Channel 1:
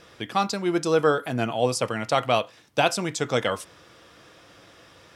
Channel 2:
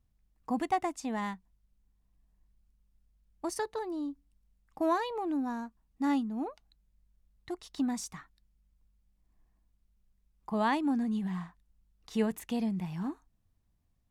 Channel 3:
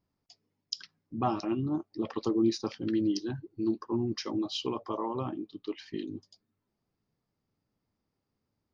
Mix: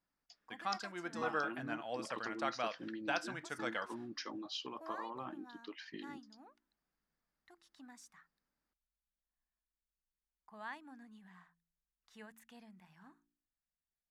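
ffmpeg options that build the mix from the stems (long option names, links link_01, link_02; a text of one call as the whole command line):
ffmpeg -i stem1.wav -i stem2.wav -i stem3.wav -filter_complex "[0:a]highshelf=frequency=5200:gain=-10,agate=range=-20dB:threshold=-48dB:ratio=16:detection=peak,lowshelf=frequency=140:gain=-11.5,adelay=300,volume=-16dB[link_01];[1:a]lowshelf=frequency=350:gain=-9.5,bandreject=frequency=56.53:width_type=h:width=4,bandreject=frequency=113.06:width_type=h:width=4,bandreject=frequency=169.59:width_type=h:width=4,bandreject=frequency=226.12:width_type=h:width=4,bandreject=frequency=282.65:width_type=h:width=4,bandreject=frequency=339.18:width_type=h:width=4,bandreject=frequency=395.71:width_type=h:width=4,volume=-18dB[link_02];[2:a]highpass=frequency=250:poles=1,acompressor=threshold=-34dB:ratio=6,volume=-5dB[link_03];[link_01][link_02][link_03]amix=inputs=3:normalize=0,equalizer=frequency=100:width_type=o:width=0.67:gain=-9,equalizer=frequency=400:width_type=o:width=0.67:gain=-6,equalizer=frequency=1600:width_type=o:width=0.67:gain=9" out.wav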